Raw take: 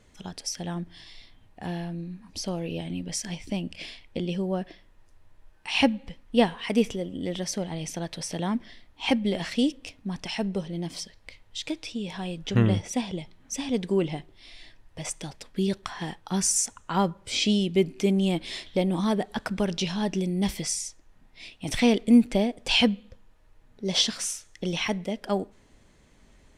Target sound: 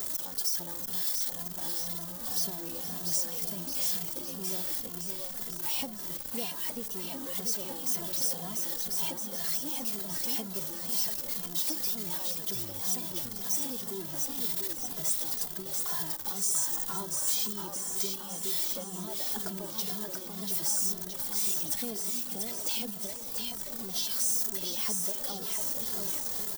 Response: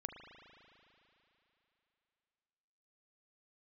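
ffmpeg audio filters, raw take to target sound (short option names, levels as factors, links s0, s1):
-filter_complex "[0:a]aeval=exprs='val(0)+0.5*0.0501*sgn(val(0))':c=same,equalizer=f=2400:t=o:w=0.86:g=-11.5,acompressor=threshold=0.0447:ratio=4,aemphasis=mode=production:type=bsi,asplit=2[s0][s1];[s1]aecho=0:1:690|1311|1870|2373|2826:0.631|0.398|0.251|0.158|0.1[s2];[s0][s2]amix=inputs=2:normalize=0,asplit=2[s3][s4];[s4]adelay=2.5,afreqshift=-2[s5];[s3][s5]amix=inputs=2:normalize=1,volume=0.447"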